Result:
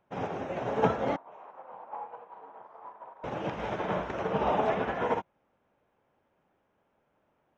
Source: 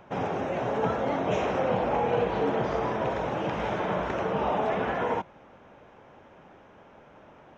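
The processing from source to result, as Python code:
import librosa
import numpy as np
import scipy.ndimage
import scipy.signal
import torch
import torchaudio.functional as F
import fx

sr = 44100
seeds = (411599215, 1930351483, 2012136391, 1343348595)

y = fx.bandpass_q(x, sr, hz=970.0, q=3.2, at=(1.16, 3.24))
y = fx.upward_expand(y, sr, threshold_db=-40.0, expansion=2.5)
y = F.gain(torch.from_numpy(y), 4.0).numpy()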